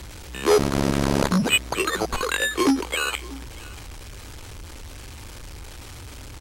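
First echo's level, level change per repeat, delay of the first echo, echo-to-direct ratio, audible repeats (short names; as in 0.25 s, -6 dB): -20.5 dB, no steady repeat, 0.637 s, -20.5 dB, 1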